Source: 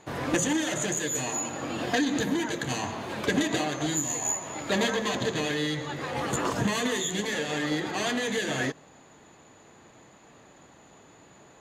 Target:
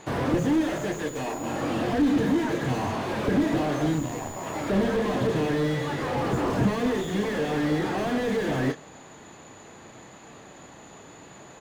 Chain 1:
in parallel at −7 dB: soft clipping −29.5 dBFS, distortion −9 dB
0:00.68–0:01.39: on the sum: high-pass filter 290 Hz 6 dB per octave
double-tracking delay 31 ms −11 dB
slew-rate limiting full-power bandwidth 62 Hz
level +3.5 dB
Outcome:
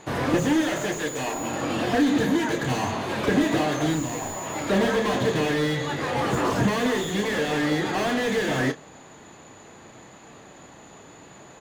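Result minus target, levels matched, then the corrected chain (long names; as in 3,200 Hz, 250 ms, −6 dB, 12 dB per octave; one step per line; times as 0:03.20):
slew-rate limiting: distortion −5 dB
in parallel at −7 dB: soft clipping −29.5 dBFS, distortion −9 dB
0:00.68–0:01.39: on the sum: high-pass filter 290 Hz 6 dB per octave
double-tracking delay 31 ms −11 dB
slew-rate limiting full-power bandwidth 28 Hz
level +3.5 dB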